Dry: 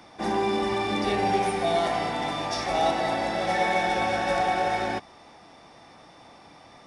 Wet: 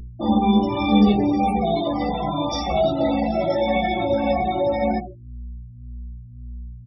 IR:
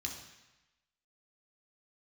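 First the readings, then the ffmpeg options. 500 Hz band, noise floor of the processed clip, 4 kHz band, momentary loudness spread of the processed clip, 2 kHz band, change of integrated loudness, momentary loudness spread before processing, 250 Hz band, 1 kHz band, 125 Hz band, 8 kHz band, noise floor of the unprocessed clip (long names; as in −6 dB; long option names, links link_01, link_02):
+5.0 dB, −40 dBFS, +1.0 dB, 21 LU, −4.0 dB, +5.0 dB, 5 LU, +12.5 dB, +1.5 dB, +10.0 dB, can't be measured, −51 dBFS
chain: -filter_complex "[0:a]acrossover=split=360|3000[link_01][link_02][link_03];[link_02]acompressor=threshold=-27dB:ratio=6[link_04];[link_01][link_04][link_03]amix=inputs=3:normalize=0,asplit=2[link_05][link_06];[1:a]atrim=start_sample=2205[link_07];[link_06][link_07]afir=irnorm=-1:irlink=0,volume=-2dB[link_08];[link_05][link_08]amix=inputs=2:normalize=0,afftfilt=real='re*gte(hypot(re,im),0.0631)':imag='im*gte(hypot(re,im),0.0631)':win_size=1024:overlap=0.75,aemphasis=mode=reproduction:type=75fm,aeval=exprs='val(0)+0.00708*(sin(2*PI*60*n/s)+sin(2*PI*2*60*n/s)/2+sin(2*PI*3*60*n/s)/3+sin(2*PI*4*60*n/s)/4+sin(2*PI*5*60*n/s)/5)':channel_layout=same,acompressor=mode=upward:threshold=-37dB:ratio=2.5,equalizer=frequency=2000:width_type=o:width=1.2:gain=-5,aresample=22050,aresample=44100,bandreject=frequency=50:width_type=h:width=6,bandreject=frequency=100:width_type=h:width=6,bandreject=frequency=150:width_type=h:width=6,bandreject=frequency=200:width_type=h:width=6,bandreject=frequency=250:width_type=h:width=6,bandreject=frequency=300:width_type=h:width=6,bandreject=frequency=350:width_type=h:width=6,bandreject=frequency=400:width_type=h:width=6,bandreject=frequency=450:width_type=h:width=6,asplit=2[link_09][link_10];[link_10]adelay=14,volume=-5dB[link_11];[link_09][link_11]amix=inputs=2:normalize=0,asplit=2[link_12][link_13];[link_13]adelay=2.3,afreqshift=-1.8[link_14];[link_12][link_14]amix=inputs=2:normalize=1,volume=8.5dB"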